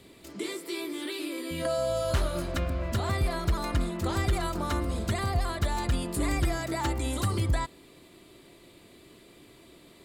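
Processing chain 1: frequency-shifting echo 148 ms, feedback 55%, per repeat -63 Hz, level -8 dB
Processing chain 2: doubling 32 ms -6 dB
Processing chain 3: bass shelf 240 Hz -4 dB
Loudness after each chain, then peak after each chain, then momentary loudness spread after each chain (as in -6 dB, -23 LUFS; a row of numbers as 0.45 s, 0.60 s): -29.5 LUFS, -29.5 LUFS, -32.0 LUFS; -15.5 dBFS, -15.5 dBFS, -18.5 dBFS; 8 LU, 8 LU, 5 LU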